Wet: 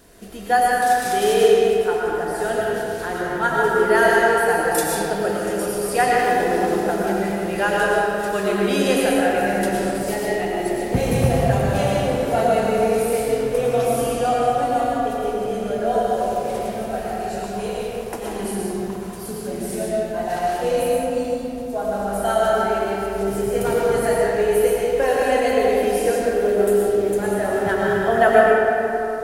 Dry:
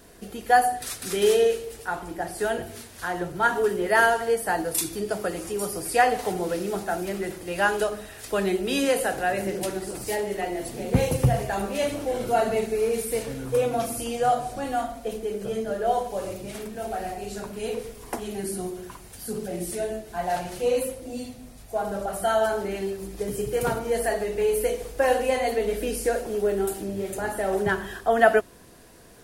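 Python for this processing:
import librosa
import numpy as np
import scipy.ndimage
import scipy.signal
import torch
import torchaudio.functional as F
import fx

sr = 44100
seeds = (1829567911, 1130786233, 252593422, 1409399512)

y = fx.rev_freeverb(x, sr, rt60_s=3.3, hf_ratio=0.45, predelay_ms=70, drr_db=-4.5)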